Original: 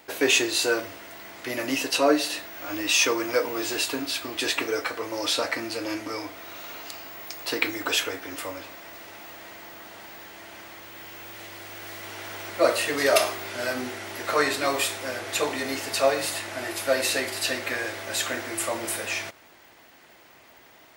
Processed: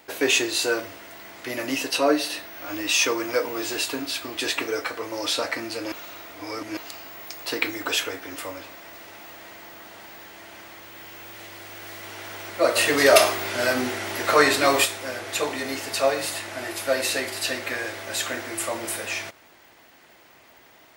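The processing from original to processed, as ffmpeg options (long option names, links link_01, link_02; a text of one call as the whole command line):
ffmpeg -i in.wav -filter_complex "[0:a]asettb=1/sr,asplit=3[link_01][link_02][link_03];[link_01]atrim=end=1.904[link_04];[link_02]atrim=start=1.9:end=2.68,asetpts=PTS-STARTPTS,afade=type=in:duration=0.004:curve=qsin,afade=type=out:start_time=0.776:duration=0.004:curve=qsin,bandreject=frequency=7200:width=7.3[link_05];[link_03]atrim=start=2.676[link_06];[link_04][link_05]acrossfade=duration=0.004:curve1=hsin:curve2=qsin[link_07];[link_07][link_06]acrossfade=duration=0.004:curve1=qsin:curve2=hsin,asplit=3[link_08][link_09][link_10];[link_08]afade=type=out:start_time=12.75:duration=0.02[link_11];[link_09]acontrast=52,afade=type=in:start_time=12.75:duration=0.02,afade=type=out:start_time=14.84:duration=0.02[link_12];[link_10]afade=type=in:start_time=14.84:duration=0.02[link_13];[link_11][link_12][link_13]amix=inputs=3:normalize=0,asplit=3[link_14][link_15][link_16];[link_14]atrim=end=5.922[link_17];[link_15]atrim=start=5.918:end=6.772,asetpts=PTS-STARTPTS,areverse[link_18];[link_16]atrim=start=6.768[link_19];[link_17][link_18]acrossfade=duration=0.004:curve1=hsin:curve2=hsin[link_20];[link_20][link_19]acrossfade=duration=0.004:curve1=hsin:curve2=hsin" out.wav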